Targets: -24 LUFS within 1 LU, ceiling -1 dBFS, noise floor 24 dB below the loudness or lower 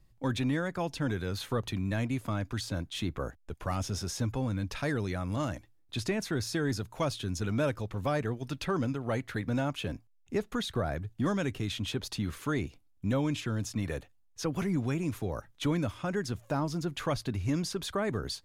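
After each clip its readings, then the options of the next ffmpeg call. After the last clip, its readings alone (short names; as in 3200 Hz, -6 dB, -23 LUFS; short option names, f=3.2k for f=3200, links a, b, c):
loudness -33.0 LUFS; peak -19.0 dBFS; loudness target -24.0 LUFS
-> -af "volume=9dB"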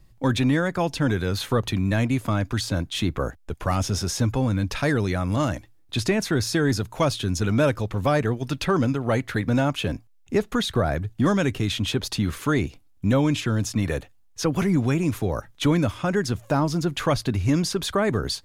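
loudness -24.0 LUFS; peak -10.0 dBFS; noise floor -55 dBFS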